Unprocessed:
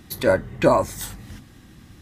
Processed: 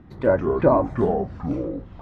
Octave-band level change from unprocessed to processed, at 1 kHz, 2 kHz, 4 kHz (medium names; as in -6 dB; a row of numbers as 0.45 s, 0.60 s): 0.0 dB, -6.0 dB, under -15 dB